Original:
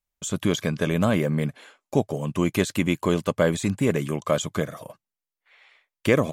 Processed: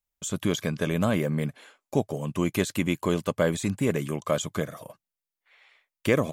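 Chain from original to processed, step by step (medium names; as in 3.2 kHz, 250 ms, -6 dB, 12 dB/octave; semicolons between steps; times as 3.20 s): treble shelf 11 kHz +5.5 dB; trim -3 dB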